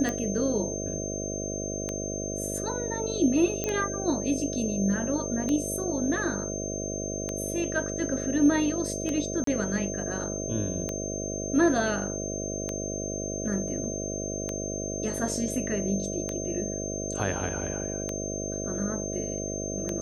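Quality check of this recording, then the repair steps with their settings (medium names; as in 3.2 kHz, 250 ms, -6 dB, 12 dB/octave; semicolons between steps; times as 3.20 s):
buzz 50 Hz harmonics 13 -34 dBFS
tick 33 1/3 rpm -16 dBFS
whine 6.3 kHz -35 dBFS
3.64 s: pop -14 dBFS
9.44–9.47 s: dropout 33 ms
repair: de-click; band-stop 6.3 kHz, Q 30; de-hum 50 Hz, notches 13; interpolate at 9.44 s, 33 ms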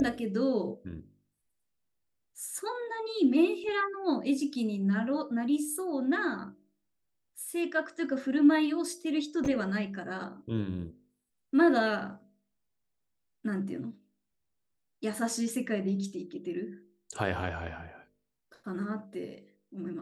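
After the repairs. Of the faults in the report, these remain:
nothing left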